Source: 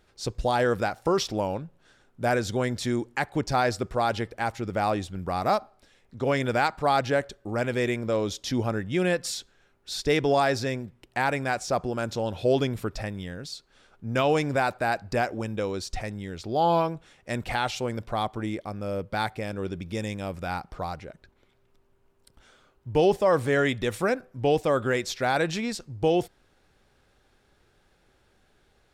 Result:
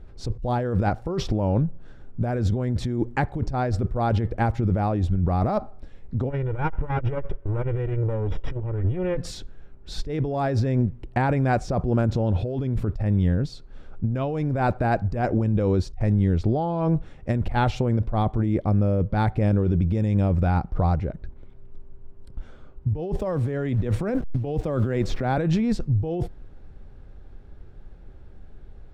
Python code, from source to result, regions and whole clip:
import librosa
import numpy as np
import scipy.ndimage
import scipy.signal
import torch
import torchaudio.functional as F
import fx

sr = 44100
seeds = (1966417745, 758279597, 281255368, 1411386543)

y = fx.chain(x, sr, fx.lower_of_two(delay_ms=2.1),
    fx.savgol(points=25), at=(6.3, 9.17))
y = fx.chain(y, sr, fx.delta_hold(step_db=-46.0),
    fx.band_squash(depth_pct=70), at=(23.19, 25.38))
y = fx.tilt_eq(y, sr, slope=-4.5)
y = fx.over_compress(y, sr, threshold_db=-23.0, ratio=-1.0)